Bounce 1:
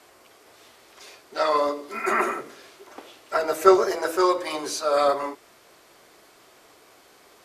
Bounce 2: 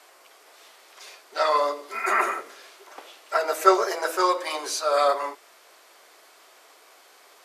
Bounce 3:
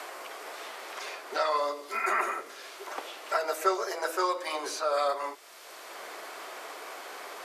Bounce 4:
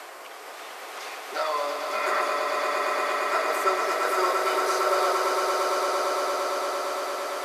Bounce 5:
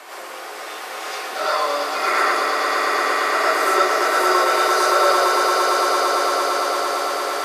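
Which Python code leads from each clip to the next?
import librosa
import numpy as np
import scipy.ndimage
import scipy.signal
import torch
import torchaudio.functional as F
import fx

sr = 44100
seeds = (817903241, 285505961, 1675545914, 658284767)

y1 = scipy.signal.sosfilt(scipy.signal.butter(2, 540.0, 'highpass', fs=sr, output='sos'), x)
y1 = F.gain(torch.from_numpy(y1), 1.5).numpy()
y2 = fx.band_squash(y1, sr, depth_pct=70)
y2 = F.gain(torch.from_numpy(y2), -5.0).numpy()
y3 = fx.echo_swell(y2, sr, ms=114, loudest=8, wet_db=-6.0)
y4 = fx.rev_gated(y3, sr, seeds[0], gate_ms=150, shape='rising', drr_db=-7.0)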